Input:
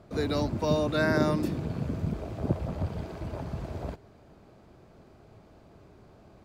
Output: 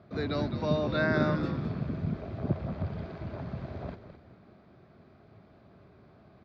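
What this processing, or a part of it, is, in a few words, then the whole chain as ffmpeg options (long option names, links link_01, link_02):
frequency-shifting delay pedal into a guitar cabinet: -filter_complex "[0:a]asplit=5[link_01][link_02][link_03][link_04][link_05];[link_02]adelay=210,afreqshift=-90,volume=-9.5dB[link_06];[link_03]adelay=420,afreqshift=-180,volume=-18.6dB[link_07];[link_04]adelay=630,afreqshift=-270,volume=-27.7dB[link_08];[link_05]adelay=840,afreqshift=-360,volume=-36.9dB[link_09];[link_01][link_06][link_07][link_08][link_09]amix=inputs=5:normalize=0,highpass=89,equalizer=frequency=310:width_type=q:width=4:gain=-4,equalizer=frequency=490:width_type=q:width=4:gain=-6,equalizer=frequency=890:width_type=q:width=4:gain=-6,equalizer=frequency=2900:width_type=q:width=4:gain=-6,lowpass=frequency=4100:width=0.5412,lowpass=frequency=4100:width=1.3066"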